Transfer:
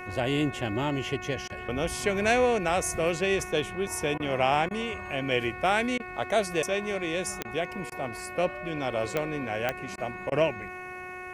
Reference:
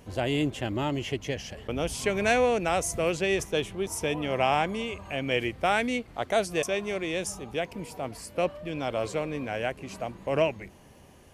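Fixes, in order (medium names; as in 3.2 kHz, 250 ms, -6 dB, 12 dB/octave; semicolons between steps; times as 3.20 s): de-click; de-hum 365.8 Hz, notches 7; interpolate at 1.48/4.18/4.69/5.98/7.43/7.90/9.96/10.30 s, 17 ms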